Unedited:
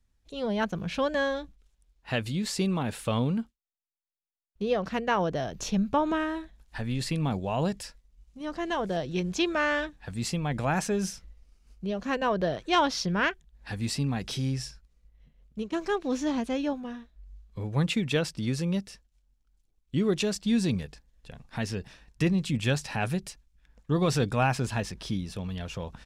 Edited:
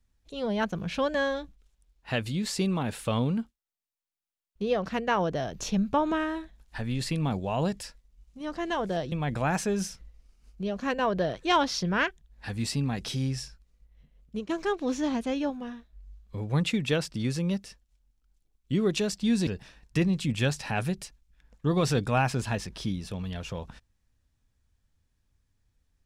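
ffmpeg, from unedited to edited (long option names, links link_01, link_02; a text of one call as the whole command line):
ffmpeg -i in.wav -filter_complex "[0:a]asplit=3[link_01][link_02][link_03];[link_01]atrim=end=9.122[link_04];[link_02]atrim=start=10.348:end=20.702[link_05];[link_03]atrim=start=21.718[link_06];[link_04][link_05]acrossfade=duration=0.004:curve1=hsin:curve2=hsin[link_07];[link_07][link_06]acrossfade=duration=0.004:curve1=hsin:curve2=hsin" out.wav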